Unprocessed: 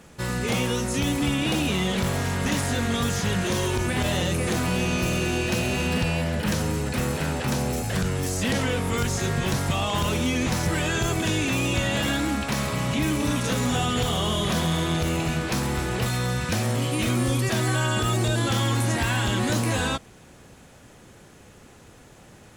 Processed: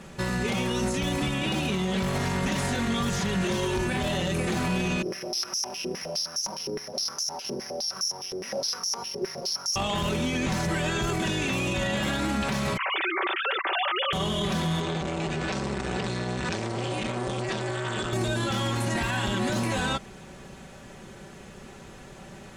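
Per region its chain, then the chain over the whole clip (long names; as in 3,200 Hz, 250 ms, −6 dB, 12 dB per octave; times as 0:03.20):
0:05.02–0:09.76: running median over 25 samples + bad sample-rate conversion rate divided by 8×, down none, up zero stuff + band-pass on a step sequencer 9.7 Hz 400–6,300 Hz
0:12.77–0:14.13: three sine waves on the formant tracks + high-pass filter 850 Hz
0:14.80–0:18.13: elliptic low-pass filter 8,700 Hz, stop band 50 dB + saturating transformer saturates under 810 Hz
whole clip: high-shelf EQ 9,900 Hz −11.5 dB; comb filter 5.2 ms, depth 49%; brickwall limiter −23 dBFS; level +4 dB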